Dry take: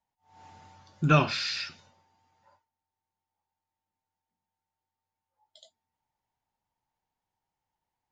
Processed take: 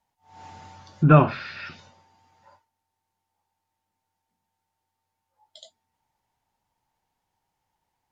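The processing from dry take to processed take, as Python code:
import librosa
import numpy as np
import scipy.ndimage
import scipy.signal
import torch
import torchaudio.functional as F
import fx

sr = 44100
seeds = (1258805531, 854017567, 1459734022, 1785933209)

y = fx.env_lowpass_down(x, sr, base_hz=1300.0, full_db=-29.0)
y = F.gain(torch.from_numpy(y), 8.0).numpy()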